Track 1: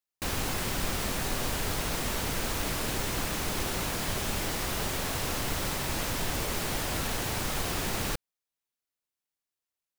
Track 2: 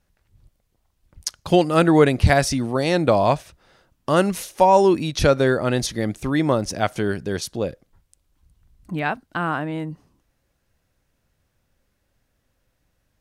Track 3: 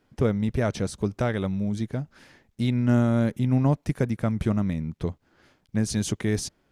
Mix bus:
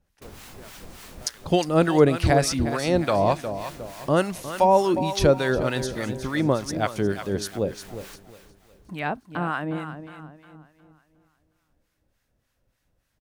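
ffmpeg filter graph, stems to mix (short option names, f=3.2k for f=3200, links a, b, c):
-filter_complex "[0:a]volume=-10dB,asplit=2[a][b];[b]volume=-11dB[c];[1:a]volume=0dB,asplit=3[d][e][f];[e]volume=-11dB[g];[2:a]highpass=f=1k:p=1,volume=-13.5dB[h];[f]apad=whole_len=440126[i];[a][i]sidechaincompress=threshold=-34dB:ratio=8:attack=16:release=237[j];[c][g]amix=inputs=2:normalize=0,aecho=0:1:359|718|1077|1436|1795|2154:1|0.4|0.16|0.064|0.0256|0.0102[k];[j][d][h][k]amix=inputs=4:normalize=0,acrossover=split=880[l][m];[l]aeval=exprs='val(0)*(1-0.7/2+0.7/2*cos(2*PI*3.4*n/s))':c=same[n];[m]aeval=exprs='val(0)*(1-0.7/2-0.7/2*cos(2*PI*3.4*n/s))':c=same[o];[n][o]amix=inputs=2:normalize=0"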